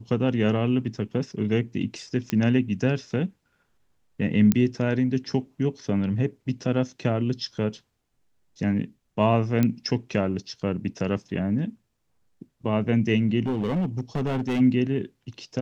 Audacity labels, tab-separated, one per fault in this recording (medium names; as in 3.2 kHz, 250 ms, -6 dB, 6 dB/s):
2.300000	2.300000	pop -13 dBFS
4.520000	4.520000	pop -8 dBFS
9.630000	9.630000	pop -10 dBFS
13.420000	14.610000	clipped -21.5 dBFS